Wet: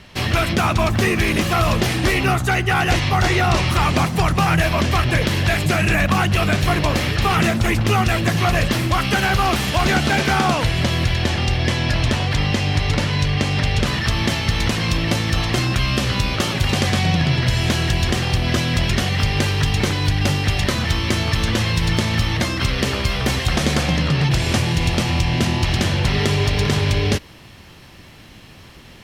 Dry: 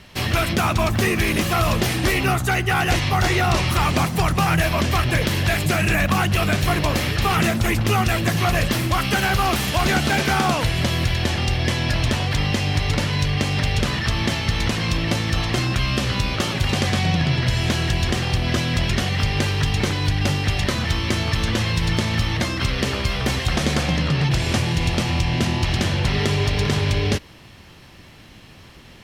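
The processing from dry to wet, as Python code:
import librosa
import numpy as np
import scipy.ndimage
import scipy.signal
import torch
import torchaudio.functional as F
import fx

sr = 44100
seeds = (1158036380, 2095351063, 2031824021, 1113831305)

y = fx.high_shelf(x, sr, hz=11000.0, db=fx.steps((0.0, -9.0), (13.85, 3.0)))
y = F.gain(torch.from_numpy(y), 2.0).numpy()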